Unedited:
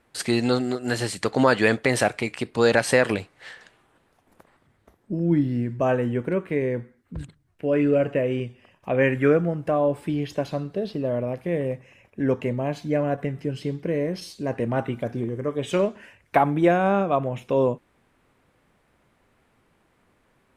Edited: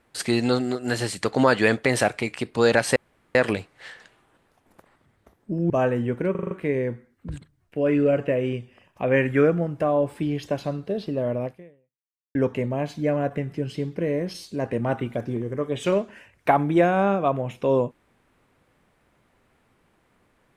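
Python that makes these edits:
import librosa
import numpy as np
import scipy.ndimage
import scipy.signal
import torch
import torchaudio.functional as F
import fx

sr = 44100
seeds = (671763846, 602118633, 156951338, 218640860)

y = fx.edit(x, sr, fx.insert_room_tone(at_s=2.96, length_s=0.39),
    fx.cut(start_s=5.31, length_s=0.46),
    fx.stutter(start_s=6.38, slice_s=0.04, count=6),
    fx.fade_out_span(start_s=11.33, length_s=0.89, curve='exp'), tone=tone)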